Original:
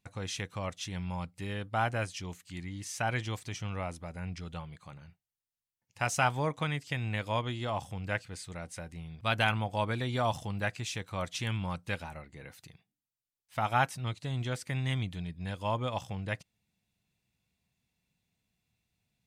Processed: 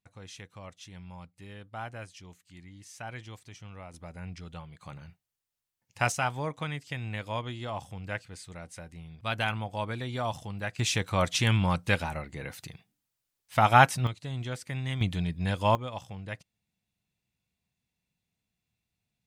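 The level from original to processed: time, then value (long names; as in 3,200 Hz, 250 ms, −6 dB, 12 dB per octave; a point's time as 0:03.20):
−9 dB
from 0:03.94 −2 dB
from 0:04.81 +4.5 dB
from 0:06.12 −2 dB
from 0:10.79 +9 dB
from 0:14.07 −1 dB
from 0:15.01 +8 dB
from 0:15.75 −3.5 dB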